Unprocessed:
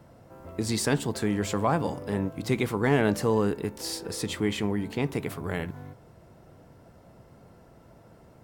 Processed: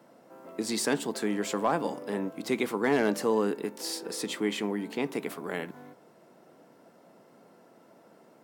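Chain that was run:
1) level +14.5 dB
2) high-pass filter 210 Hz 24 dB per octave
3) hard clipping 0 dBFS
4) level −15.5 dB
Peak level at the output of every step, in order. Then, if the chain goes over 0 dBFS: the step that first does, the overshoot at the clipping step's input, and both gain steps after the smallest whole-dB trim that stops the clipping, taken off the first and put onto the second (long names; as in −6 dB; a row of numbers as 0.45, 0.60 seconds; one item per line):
+1.5, +4.0, 0.0, −15.5 dBFS
step 1, 4.0 dB
step 1 +10.5 dB, step 4 −11.5 dB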